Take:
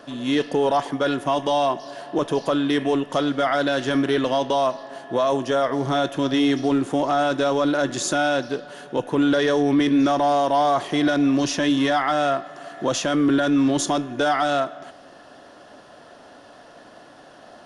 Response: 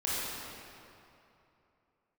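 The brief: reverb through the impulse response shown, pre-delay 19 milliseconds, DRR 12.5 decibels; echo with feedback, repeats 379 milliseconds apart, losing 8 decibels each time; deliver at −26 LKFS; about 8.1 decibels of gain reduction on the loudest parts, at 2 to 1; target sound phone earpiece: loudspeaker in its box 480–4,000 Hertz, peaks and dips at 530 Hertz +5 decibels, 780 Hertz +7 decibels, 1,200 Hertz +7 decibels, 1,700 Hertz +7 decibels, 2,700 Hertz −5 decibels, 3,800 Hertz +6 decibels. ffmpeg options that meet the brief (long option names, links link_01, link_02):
-filter_complex "[0:a]acompressor=threshold=-31dB:ratio=2,aecho=1:1:379|758|1137|1516|1895:0.398|0.159|0.0637|0.0255|0.0102,asplit=2[link_01][link_02];[1:a]atrim=start_sample=2205,adelay=19[link_03];[link_02][link_03]afir=irnorm=-1:irlink=0,volume=-20.5dB[link_04];[link_01][link_04]amix=inputs=2:normalize=0,highpass=480,equalizer=frequency=530:width_type=q:width=4:gain=5,equalizer=frequency=780:width_type=q:width=4:gain=7,equalizer=frequency=1200:width_type=q:width=4:gain=7,equalizer=frequency=1700:width_type=q:width=4:gain=7,equalizer=frequency=2700:width_type=q:width=4:gain=-5,equalizer=frequency=3800:width_type=q:width=4:gain=6,lowpass=frequency=4000:width=0.5412,lowpass=frequency=4000:width=1.3066,volume=0.5dB"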